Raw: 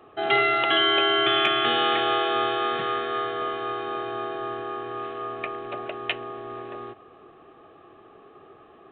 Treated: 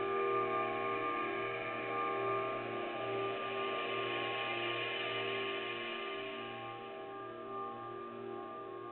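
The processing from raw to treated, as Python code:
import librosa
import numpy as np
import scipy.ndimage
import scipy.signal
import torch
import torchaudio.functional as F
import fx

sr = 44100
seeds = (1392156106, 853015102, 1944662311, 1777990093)

y = fx.doppler_pass(x, sr, speed_mps=9, closest_m=6.2, pass_at_s=3.52)
y = fx.paulstretch(y, sr, seeds[0], factor=5.3, window_s=1.0, from_s=5.16)
y = y * librosa.db_to_amplitude(5.5)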